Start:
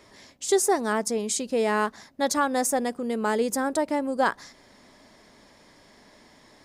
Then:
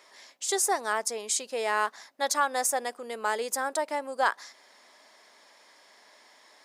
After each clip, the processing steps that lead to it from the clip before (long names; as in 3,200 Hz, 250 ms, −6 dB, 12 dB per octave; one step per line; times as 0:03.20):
high-pass filter 670 Hz 12 dB per octave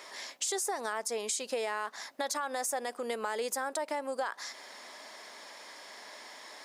brickwall limiter −23 dBFS, peak gain reduction 11 dB
downward compressor 3 to 1, threshold −42 dBFS, peak gain reduction 10.5 dB
level +8.5 dB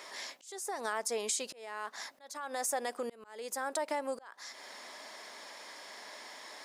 volume swells 480 ms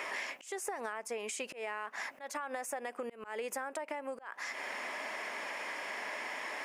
high shelf with overshoot 3,200 Hz −6.5 dB, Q 3
downward compressor 16 to 1, threshold −44 dBFS, peak gain reduction 16 dB
level +9 dB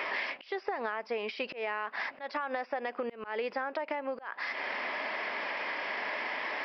downsampling to 11,025 Hz
level +5 dB